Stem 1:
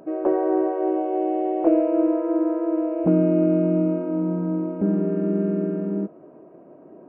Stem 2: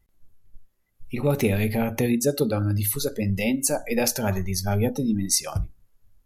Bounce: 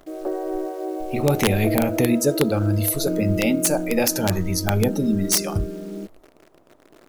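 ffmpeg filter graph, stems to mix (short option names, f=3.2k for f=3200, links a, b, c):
-filter_complex "[0:a]highpass=f=240:p=1,bandreject=f=1k:w=5.7,acrusher=bits=8:dc=4:mix=0:aa=0.000001,volume=-4.5dB[a];[1:a]volume=2.5dB[b];[a][b]amix=inputs=2:normalize=0,aeval=exprs='(mod(2.66*val(0)+1,2)-1)/2.66':c=same"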